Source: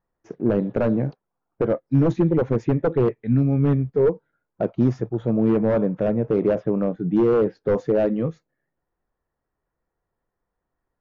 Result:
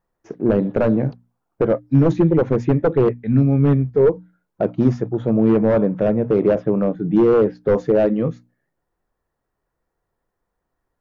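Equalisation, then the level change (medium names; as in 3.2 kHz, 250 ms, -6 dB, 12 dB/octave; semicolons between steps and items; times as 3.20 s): hum notches 60/120/180/240/300 Hz; +4.0 dB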